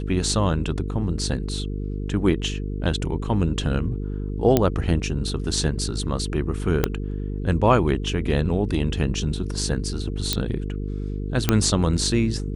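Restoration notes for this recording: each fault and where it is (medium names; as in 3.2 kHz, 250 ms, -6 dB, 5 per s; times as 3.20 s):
buzz 50 Hz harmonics 9 -28 dBFS
4.57 s: pop -4 dBFS
6.84 s: pop -5 dBFS
10.33 s: pop -4 dBFS
11.49 s: pop -3 dBFS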